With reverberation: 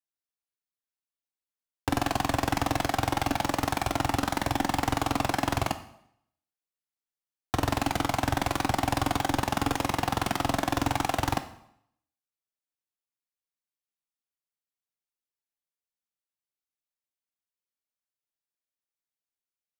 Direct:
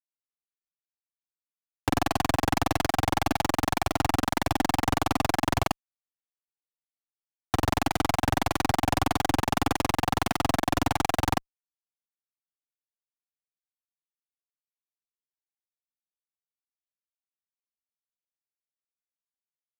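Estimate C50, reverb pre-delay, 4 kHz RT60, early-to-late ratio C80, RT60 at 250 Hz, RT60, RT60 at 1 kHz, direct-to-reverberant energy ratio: 12.5 dB, 6 ms, 0.65 s, 16.0 dB, 0.70 s, 0.70 s, 0.70 s, 9.5 dB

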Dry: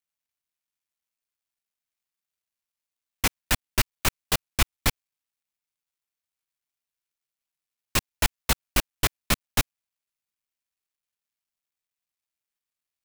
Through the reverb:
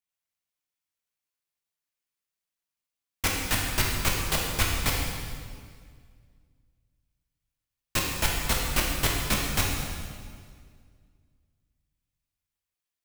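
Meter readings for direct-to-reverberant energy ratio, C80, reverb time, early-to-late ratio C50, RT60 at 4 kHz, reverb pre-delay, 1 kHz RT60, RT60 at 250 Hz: −2.5 dB, 2.5 dB, 2.0 s, 1.0 dB, 1.7 s, 6 ms, 1.9 s, 2.3 s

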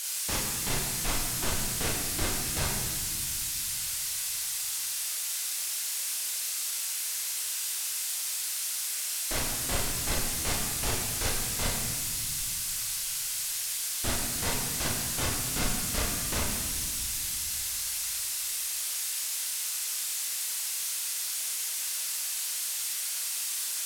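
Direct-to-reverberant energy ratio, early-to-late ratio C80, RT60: −3.5 dB, 3.0 dB, 1.8 s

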